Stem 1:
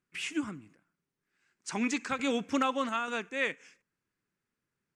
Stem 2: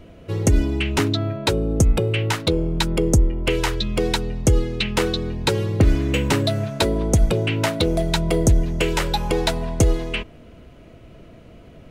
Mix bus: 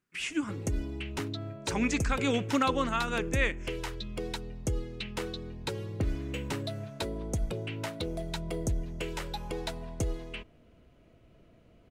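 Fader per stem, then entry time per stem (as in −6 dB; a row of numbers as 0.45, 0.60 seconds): +1.5, −15.0 decibels; 0.00, 0.20 seconds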